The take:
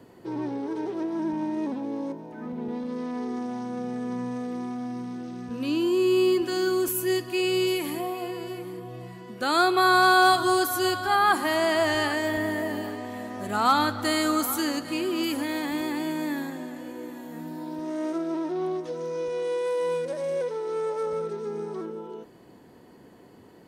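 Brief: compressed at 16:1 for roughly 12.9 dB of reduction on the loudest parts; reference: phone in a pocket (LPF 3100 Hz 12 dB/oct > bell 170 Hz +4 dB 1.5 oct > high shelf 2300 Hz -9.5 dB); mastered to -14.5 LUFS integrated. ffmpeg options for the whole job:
-af "acompressor=threshold=-28dB:ratio=16,lowpass=3.1k,equalizer=f=170:t=o:w=1.5:g=4,highshelf=f=2.3k:g=-9.5,volume=18dB"

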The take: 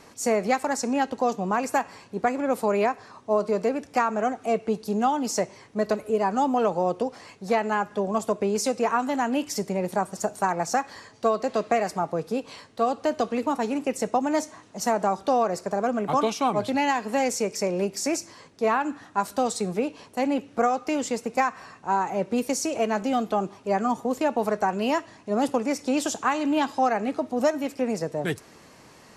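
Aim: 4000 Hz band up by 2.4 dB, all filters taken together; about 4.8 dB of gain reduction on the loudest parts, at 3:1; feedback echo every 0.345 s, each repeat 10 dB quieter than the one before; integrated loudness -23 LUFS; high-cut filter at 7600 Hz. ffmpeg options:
-af "lowpass=7.6k,equalizer=f=4k:t=o:g=4,acompressor=threshold=-24dB:ratio=3,aecho=1:1:345|690|1035|1380:0.316|0.101|0.0324|0.0104,volume=6dB"

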